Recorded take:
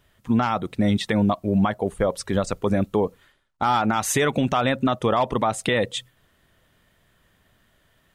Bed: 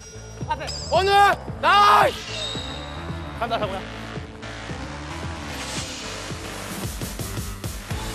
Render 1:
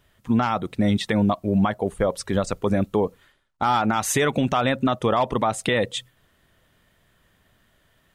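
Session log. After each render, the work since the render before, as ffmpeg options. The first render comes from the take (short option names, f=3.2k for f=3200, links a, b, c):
-af anull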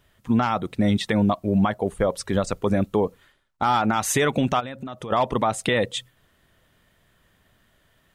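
-filter_complex "[0:a]asplit=3[a][b][c];[a]afade=t=out:st=4.59:d=0.02[d];[b]acompressor=threshold=-31dB:ratio=6:attack=3.2:release=140:knee=1:detection=peak,afade=t=in:st=4.59:d=0.02,afade=t=out:st=5.1:d=0.02[e];[c]afade=t=in:st=5.1:d=0.02[f];[d][e][f]amix=inputs=3:normalize=0"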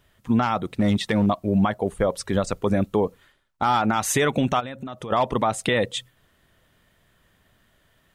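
-filter_complex "[0:a]asettb=1/sr,asplit=3[a][b][c];[a]atrim=end=0.554[d];[b]atrim=start=0.55:end=1.27,asetpts=PTS-STARTPTS,afade=t=in:d=0.004:c=qsin,afade=t=out:st=0.716:d=0.004:c=qsin,volume=14dB,asoftclip=hard,volume=-14dB[e];[c]atrim=start=1.266[f];[d][e]acrossfade=d=0.004:c1=hsin:c2=qsin[g];[g][f]acrossfade=d=0.004:c1=qsin:c2=hsin,asettb=1/sr,asplit=3[h][i][j];[h]atrim=end=4.314[k];[i]atrim=start=4.31:end=4.92,asetpts=PTS-STARTPTS,afade=t=in:d=0.004:c=qsin,afade=t=out:st=0.606:d=0.004:c=qsin,asuperstop=centerf=4800:order=20:qfactor=6.4[l];[j]atrim=start=4.916[m];[k][l]acrossfade=d=0.004:c1=hsin:c2=qsin[n];[n][m]acrossfade=d=0.004:c1=qsin:c2=hsin"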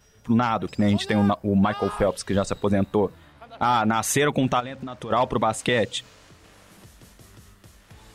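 -filter_complex "[1:a]volume=-19.5dB[a];[0:a][a]amix=inputs=2:normalize=0"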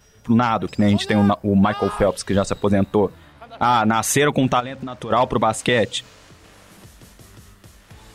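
-af "volume=4dB"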